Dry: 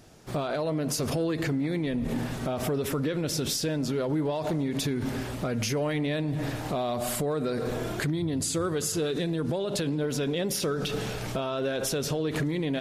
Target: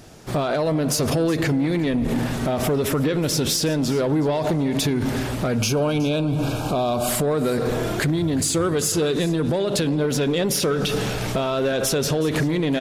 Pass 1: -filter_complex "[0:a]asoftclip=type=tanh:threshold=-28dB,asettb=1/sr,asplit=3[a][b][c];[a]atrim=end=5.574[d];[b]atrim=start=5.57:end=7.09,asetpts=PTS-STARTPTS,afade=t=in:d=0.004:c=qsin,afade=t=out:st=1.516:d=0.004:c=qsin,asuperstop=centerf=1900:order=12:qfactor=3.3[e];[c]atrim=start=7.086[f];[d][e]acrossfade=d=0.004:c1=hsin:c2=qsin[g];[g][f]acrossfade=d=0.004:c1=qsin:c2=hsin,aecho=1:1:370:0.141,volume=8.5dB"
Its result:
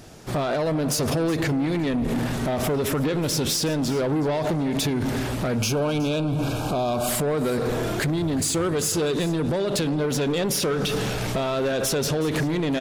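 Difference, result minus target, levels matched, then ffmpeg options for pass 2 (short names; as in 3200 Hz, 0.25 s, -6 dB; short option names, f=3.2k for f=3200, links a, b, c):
soft clip: distortion +8 dB
-filter_complex "[0:a]asoftclip=type=tanh:threshold=-22dB,asettb=1/sr,asplit=3[a][b][c];[a]atrim=end=5.574[d];[b]atrim=start=5.57:end=7.09,asetpts=PTS-STARTPTS,afade=t=in:d=0.004:c=qsin,afade=t=out:st=1.516:d=0.004:c=qsin,asuperstop=centerf=1900:order=12:qfactor=3.3[e];[c]atrim=start=7.086[f];[d][e]acrossfade=d=0.004:c1=hsin:c2=qsin[g];[g][f]acrossfade=d=0.004:c1=qsin:c2=hsin,aecho=1:1:370:0.141,volume=8.5dB"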